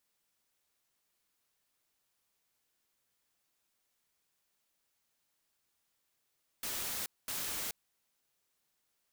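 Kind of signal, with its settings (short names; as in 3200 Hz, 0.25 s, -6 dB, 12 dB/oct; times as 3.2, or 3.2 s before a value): noise bursts white, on 0.43 s, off 0.22 s, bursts 2, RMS -38 dBFS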